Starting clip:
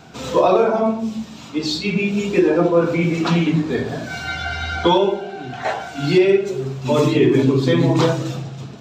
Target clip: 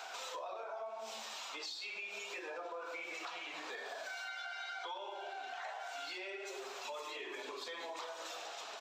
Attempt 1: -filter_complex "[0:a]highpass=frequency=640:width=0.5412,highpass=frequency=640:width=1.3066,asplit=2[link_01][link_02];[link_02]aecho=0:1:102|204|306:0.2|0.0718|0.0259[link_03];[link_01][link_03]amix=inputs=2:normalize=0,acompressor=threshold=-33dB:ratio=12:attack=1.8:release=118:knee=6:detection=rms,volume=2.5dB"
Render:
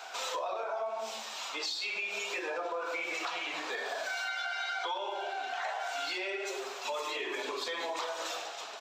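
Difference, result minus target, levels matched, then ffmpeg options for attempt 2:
downward compressor: peak gain reduction −8.5 dB
-filter_complex "[0:a]highpass=frequency=640:width=0.5412,highpass=frequency=640:width=1.3066,asplit=2[link_01][link_02];[link_02]aecho=0:1:102|204|306:0.2|0.0718|0.0259[link_03];[link_01][link_03]amix=inputs=2:normalize=0,acompressor=threshold=-42.5dB:ratio=12:attack=1.8:release=118:knee=6:detection=rms,volume=2.5dB"

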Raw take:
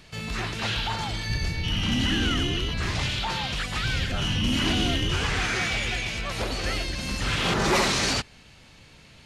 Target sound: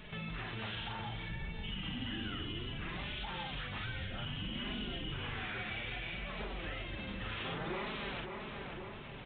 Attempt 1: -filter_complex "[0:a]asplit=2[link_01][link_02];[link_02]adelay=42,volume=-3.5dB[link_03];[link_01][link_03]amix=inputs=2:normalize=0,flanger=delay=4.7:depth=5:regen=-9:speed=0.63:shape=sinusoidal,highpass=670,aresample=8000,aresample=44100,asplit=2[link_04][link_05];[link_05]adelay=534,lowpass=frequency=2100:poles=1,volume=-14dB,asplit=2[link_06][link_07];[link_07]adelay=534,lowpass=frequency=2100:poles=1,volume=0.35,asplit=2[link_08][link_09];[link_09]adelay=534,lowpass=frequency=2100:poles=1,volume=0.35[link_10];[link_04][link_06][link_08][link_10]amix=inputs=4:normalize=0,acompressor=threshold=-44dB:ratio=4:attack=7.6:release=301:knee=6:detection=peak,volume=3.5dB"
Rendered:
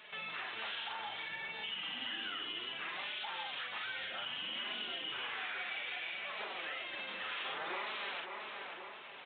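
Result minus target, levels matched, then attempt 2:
500 Hz band −4.5 dB
-filter_complex "[0:a]asplit=2[link_01][link_02];[link_02]adelay=42,volume=-3.5dB[link_03];[link_01][link_03]amix=inputs=2:normalize=0,flanger=delay=4.7:depth=5:regen=-9:speed=0.63:shape=sinusoidal,aresample=8000,aresample=44100,asplit=2[link_04][link_05];[link_05]adelay=534,lowpass=frequency=2100:poles=1,volume=-14dB,asplit=2[link_06][link_07];[link_07]adelay=534,lowpass=frequency=2100:poles=1,volume=0.35,asplit=2[link_08][link_09];[link_09]adelay=534,lowpass=frequency=2100:poles=1,volume=0.35[link_10];[link_04][link_06][link_08][link_10]amix=inputs=4:normalize=0,acompressor=threshold=-44dB:ratio=4:attack=7.6:release=301:knee=6:detection=peak,volume=3.5dB"

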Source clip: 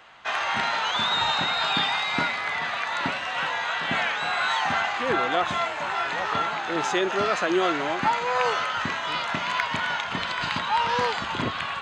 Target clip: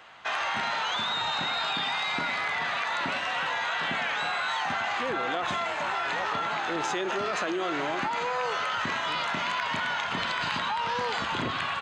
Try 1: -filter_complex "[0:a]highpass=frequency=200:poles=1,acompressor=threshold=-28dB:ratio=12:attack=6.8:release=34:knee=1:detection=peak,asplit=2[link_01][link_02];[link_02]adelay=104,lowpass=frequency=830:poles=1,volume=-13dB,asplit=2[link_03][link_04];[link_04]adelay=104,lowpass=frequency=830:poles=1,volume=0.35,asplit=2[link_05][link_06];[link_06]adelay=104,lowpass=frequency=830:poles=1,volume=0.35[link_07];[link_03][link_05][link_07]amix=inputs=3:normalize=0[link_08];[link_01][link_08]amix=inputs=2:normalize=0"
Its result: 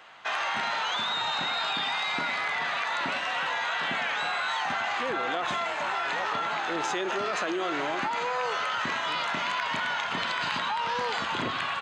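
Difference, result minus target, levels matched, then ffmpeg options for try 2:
125 Hz band −3.5 dB
-filter_complex "[0:a]highpass=frequency=63:poles=1,acompressor=threshold=-28dB:ratio=12:attack=6.8:release=34:knee=1:detection=peak,asplit=2[link_01][link_02];[link_02]adelay=104,lowpass=frequency=830:poles=1,volume=-13dB,asplit=2[link_03][link_04];[link_04]adelay=104,lowpass=frequency=830:poles=1,volume=0.35,asplit=2[link_05][link_06];[link_06]adelay=104,lowpass=frequency=830:poles=1,volume=0.35[link_07];[link_03][link_05][link_07]amix=inputs=3:normalize=0[link_08];[link_01][link_08]amix=inputs=2:normalize=0"

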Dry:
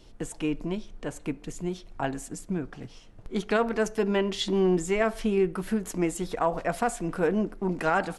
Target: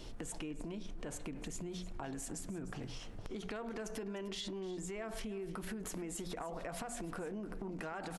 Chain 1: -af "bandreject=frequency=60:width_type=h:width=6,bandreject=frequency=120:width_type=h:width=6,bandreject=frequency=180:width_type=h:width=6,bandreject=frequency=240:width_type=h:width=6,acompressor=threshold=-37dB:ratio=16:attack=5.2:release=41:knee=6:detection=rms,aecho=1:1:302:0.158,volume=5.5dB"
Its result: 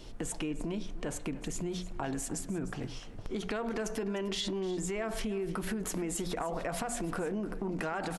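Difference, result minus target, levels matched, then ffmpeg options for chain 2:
downward compressor: peak gain reduction −8 dB
-af "bandreject=frequency=60:width_type=h:width=6,bandreject=frequency=120:width_type=h:width=6,bandreject=frequency=180:width_type=h:width=6,bandreject=frequency=240:width_type=h:width=6,acompressor=threshold=-45.5dB:ratio=16:attack=5.2:release=41:knee=6:detection=rms,aecho=1:1:302:0.158,volume=5.5dB"

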